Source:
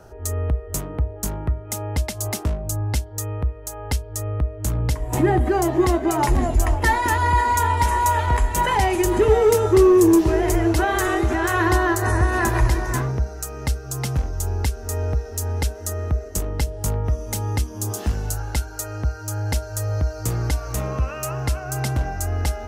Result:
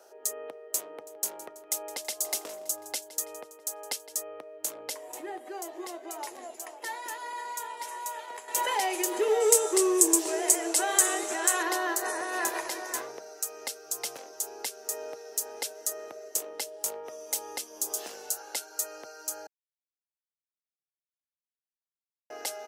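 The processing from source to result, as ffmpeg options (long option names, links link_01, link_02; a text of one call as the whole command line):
ffmpeg -i in.wav -filter_complex "[0:a]asplit=3[link_01][link_02][link_03];[link_01]afade=type=out:start_time=1.03:duration=0.02[link_04];[link_02]aecho=1:1:164|328|492|656|820:0.141|0.0735|0.0382|0.0199|0.0103,afade=type=in:start_time=1.03:duration=0.02,afade=type=out:start_time=4.21:duration=0.02[link_05];[link_03]afade=type=in:start_time=4.21:duration=0.02[link_06];[link_04][link_05][link_06]amix=inputs=3:normalize=0,asettb=1/sr,asplit=3[link_07][link_08][link_09];[link_07]atrim=end=9.404[link_10];[link_08]atrim=start=9.4:end=11.63,asetpts=PTS-STARTPTS,afade=type=in:duration=0.004:curve=qsin,afade=type=out:start_time=2.226:duration=0.004:curve=qsin,equalizer=frequency=8200:width_type=o:width=0.73:gain=14[link_11];[link_09]atrim=start=11.626[link_12];[link_10][link_11]acrossfade=duration=0.004:curve1=hsin:curve2=qsin[link_13];[link_13][link_12]acrossfade=duration=0.004:curve1=qsin:curve2=hsin,asplit=5[link_14][link_15][link_16][link_17][link_18];[link_14]atrim=end=5.122[link_19];[link_15]atrim=start=5.118:end=8.482,asetpts=PTS-STARTPTS,volume=-9dB[link_20];[link_16]atrim=start=8.478:end=19.47,asetpts=PTS-STARTPTS,afade=type=out:start_time=10.988:duration=0.004:curve=hsin[link_21];[link_17]atrim=start=19.47:end=22.3,asetpts=PTS-STARTPTS,volume=0[link_22];[link_18]atrim=start=22.3,asetpts=PTS-STARTPTS,afade=type=in:duration=0.004:curve=hsin[link_23];[link_19][link_20]acrossfade=duration=0.004:curve1=hsin:curve2=hsin[link_24];[link_21][link_22][link_23]concat=n=3:v=0:a=1[link_25];[link_24][link_25]acrossfade=duration=0.004:curve1=hsin:curve2=hsin,highpass=frequency=480:width=0.5412,highpass=frequency=480:width=1.3066,equalizer=frequency=1200:width=0.57:gain=-10" out.wav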